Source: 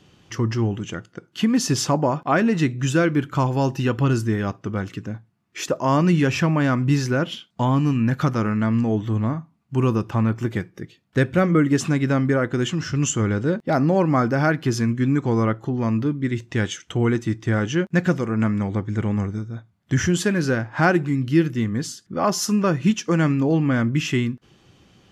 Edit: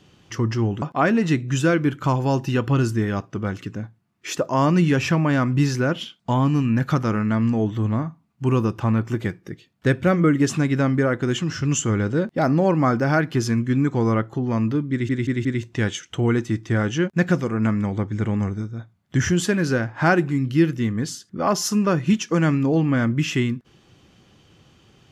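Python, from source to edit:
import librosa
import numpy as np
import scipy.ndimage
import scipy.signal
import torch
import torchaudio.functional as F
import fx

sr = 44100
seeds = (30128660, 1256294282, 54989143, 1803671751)

y = fx.edit(x, sr, fx.cut(start_s=0.82, length_s=1.31),
    fx.stutter(start_s=16.22, slice_s=0.18, count=4), tone=tone)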